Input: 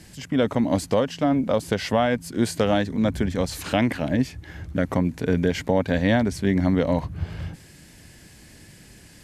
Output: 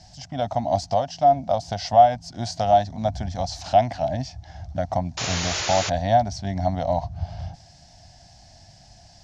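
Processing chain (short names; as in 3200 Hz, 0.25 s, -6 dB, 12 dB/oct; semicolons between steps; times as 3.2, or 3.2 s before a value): EQ curve 110 Hz 0 dB, 460 Hz -20 dB, 700 Hz +14 dB, 1100 Hz -8 dB, 2400 Hz -11 dB, 5600 Hz +6 dB, 11000 Hz -27 dB; painted sound noise, 5.17–5.9, 310–7200 Hz -28 dBFS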